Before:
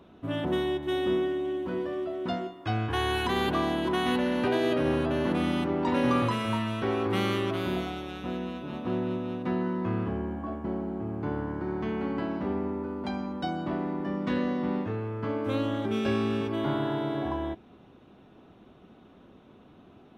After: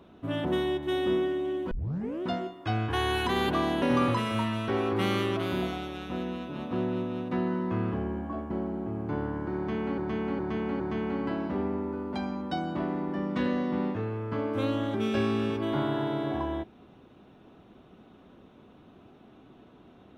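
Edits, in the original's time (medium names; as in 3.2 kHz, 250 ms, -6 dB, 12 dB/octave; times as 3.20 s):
1.71 s: tape start 0.52 s
3.82–5.96 s: delete
11.71–12.12 s: loop, 4 plays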